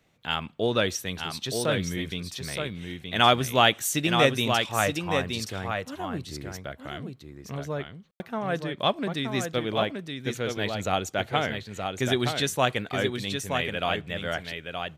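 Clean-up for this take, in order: room tone fill 8.11–8.20 s; inverse comb 922 ms -5.5 dB

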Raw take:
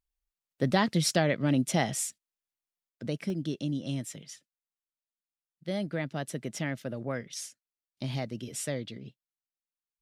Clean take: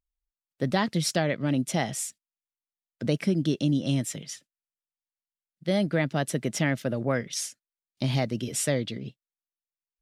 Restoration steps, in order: interpolate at 3.30/9.12 s, 1.2 ms; trim 0 dB, from 2.89 s +7.5 dB

